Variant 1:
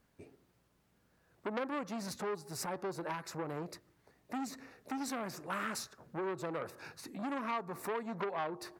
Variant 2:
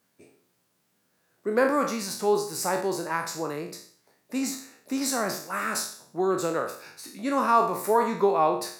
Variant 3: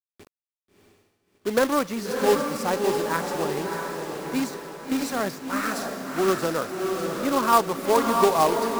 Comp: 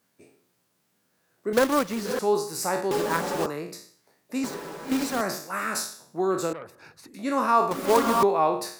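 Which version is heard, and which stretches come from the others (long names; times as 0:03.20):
2
0:01.53–0:02.19: punch in from 3
0:02.91–0:03.46: punch in from 3
0:04.44–0:05.21: punch in from 3
0:06.53–0:07.14: punch in from 1
0:07.71–0:08.23: punch in from 3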